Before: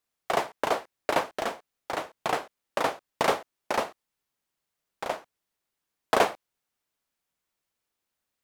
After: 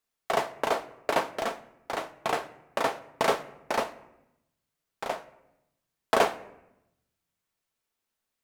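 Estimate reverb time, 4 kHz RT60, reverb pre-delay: 0.90 s, 0.55 s, 4 ms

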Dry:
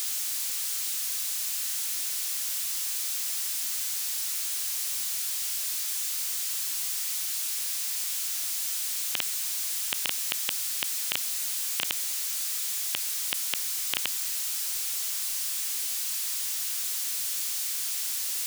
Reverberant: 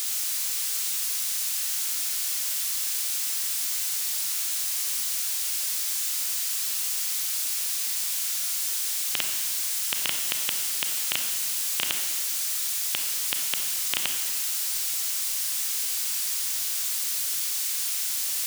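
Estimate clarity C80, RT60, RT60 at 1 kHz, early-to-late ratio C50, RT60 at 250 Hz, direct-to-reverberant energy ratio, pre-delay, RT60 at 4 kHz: 7.0 dB, 1.4 s, 1.4 s, 5.0 dB, 1.5 s, 4.0 dB, 28 ms, 1.3 s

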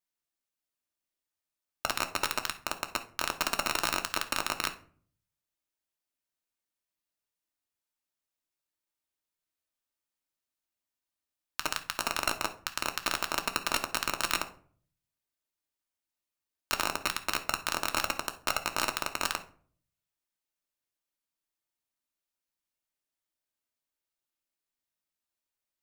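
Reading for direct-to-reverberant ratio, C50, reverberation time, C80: 5.0 dB, 13.0 dB, 0.50 s, 18.5 dB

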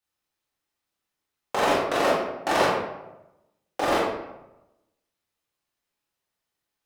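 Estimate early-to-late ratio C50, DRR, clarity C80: 0.0 dB, −7.0 dB, 3.0 dB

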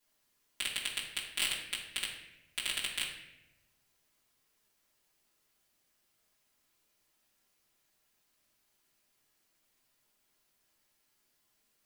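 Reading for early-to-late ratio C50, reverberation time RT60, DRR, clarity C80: 4.5 dB, 0.95 s, −9.5 dB, 7.0 dB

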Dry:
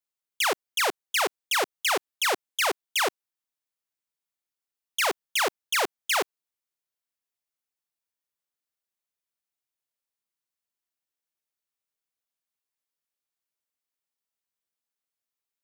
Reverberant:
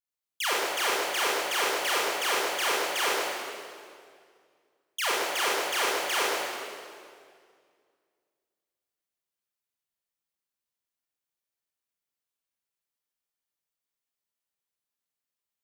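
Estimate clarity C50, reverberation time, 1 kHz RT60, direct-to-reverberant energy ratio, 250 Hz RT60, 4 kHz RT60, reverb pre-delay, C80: −3.0 dB, 2.1 s, 2.0 s, −6.0 dB, 2.4 s, 1.8 s, 25 ms, −0.5 dB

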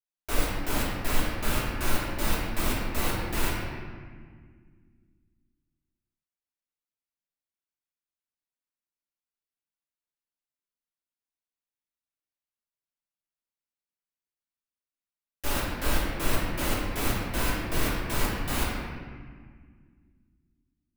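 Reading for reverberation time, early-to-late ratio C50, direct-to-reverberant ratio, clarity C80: 1.7 s, −0.5 dB, −7.5 dB, 1.5 dB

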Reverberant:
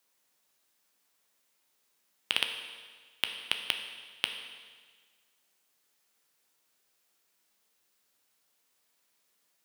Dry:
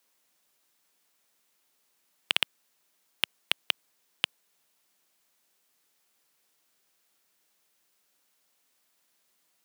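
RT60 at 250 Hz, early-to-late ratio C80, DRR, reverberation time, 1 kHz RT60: 1.5 s, 8.5 dB, 5.0 dB, 1.5 s, 1.5 s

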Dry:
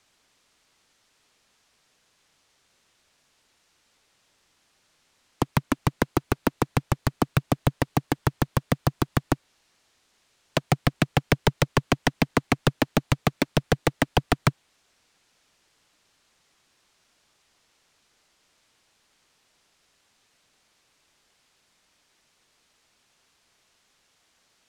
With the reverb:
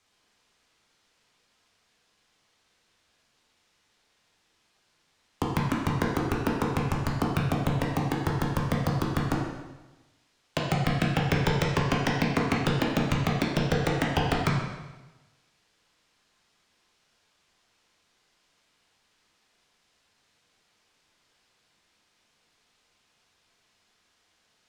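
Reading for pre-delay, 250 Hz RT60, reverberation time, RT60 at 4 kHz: 6 ms, 1.1 s, 1.1 s, 1.0 s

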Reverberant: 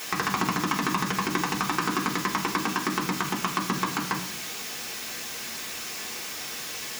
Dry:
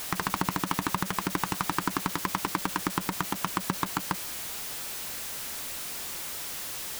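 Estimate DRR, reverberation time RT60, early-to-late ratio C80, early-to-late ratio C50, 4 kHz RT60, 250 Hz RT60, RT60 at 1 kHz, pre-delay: −2.0 dB, 0.65 s, 13.0 dB, 9.5 dB, 0.85 s, 1.0 s, 0.65 s, 3 ms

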